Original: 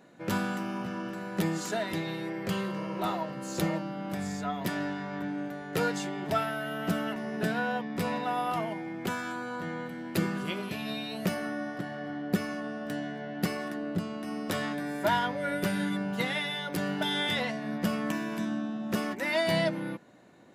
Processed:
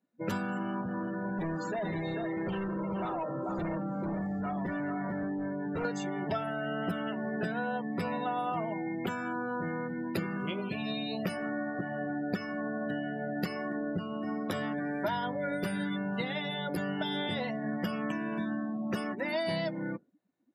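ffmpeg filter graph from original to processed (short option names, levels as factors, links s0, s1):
-filter_complex "[0:a]asettb=1/sr,asplit=3[s0][s1][s2];[s0]atrim=end=0.814[s3];[s1]atrim=start=0.81:end=5.85,asetpts=PTS-STARTPTS,afade=t=in:d=0.004:c=qsin,afade=t=out:st=5.036:d=0.004:c=qsin,lowpass=f=3900:p=1,aecho=1:1:440:0.473,atrim=end_sample=222264,asoftclip=type=hard:threshold=0.0211[s4];[s2]atrim=start=5.846[s5];[s3][s4]acrossfade=d=0.004:c1=hsin:c2=qsin[s6];[s6][s5]acrossfade=d=0.004:c1=qsin:c2=hsin,afftdn=nr=34:nf=-39,acrossover=split=980|5300[s7][s8][s9];[s7]acompressor=threshold=0.0126:ratio=4[s10];[s8]acompressor=threshold=0.00447:ratio=4[s11];[s9]acompressor=threshold=0.00178:ratio=4[s12];[s10][s11][s12]amix=inputs=3:normalize=0,volume=1.88"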